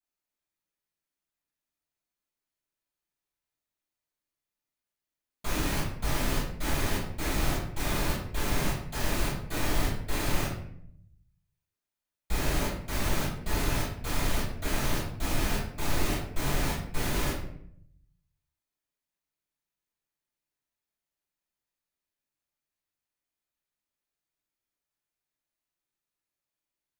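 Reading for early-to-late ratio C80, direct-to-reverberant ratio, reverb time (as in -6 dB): 7.0 dB, -11.5 dB, 0.65 s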